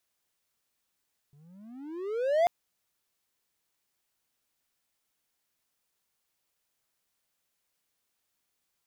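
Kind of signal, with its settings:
pitch glide with a swell triangle, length 1.14 s, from 138 Hz, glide +28.5 semitones, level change +36.5 dB, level −17 dB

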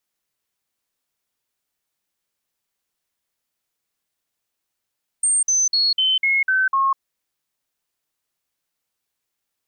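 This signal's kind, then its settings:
stepped sweep 8,670 Hz down, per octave 2, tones 7, 0.20 s, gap 0.05 s −15 dBFS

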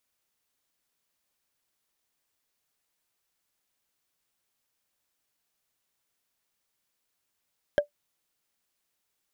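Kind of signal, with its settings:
struck wood, lowest mode 585 Hz, decay 0.11 s, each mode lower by 8 dB, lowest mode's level −13.5 dB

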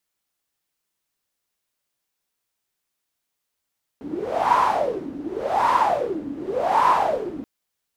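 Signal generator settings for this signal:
wind from filtered noise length 3.43 s, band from 280 Hz, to 1,000 Hz, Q 9.8, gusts 3, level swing 15 dB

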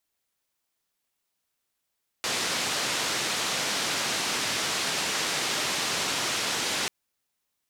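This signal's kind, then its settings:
band-limited noise 140–5,900 Hz, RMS −28.5 dBFS 4.64 s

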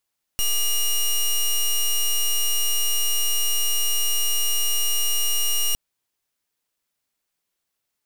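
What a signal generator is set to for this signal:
pulse wave 2,860 Hz, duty 12% −20.5 dBFS 5.36 s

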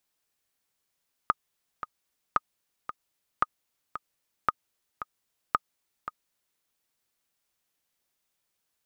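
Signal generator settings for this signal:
click track 113 BPM, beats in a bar 2, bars 5, 1,240 Hz, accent 12 dB −8.5 dBFS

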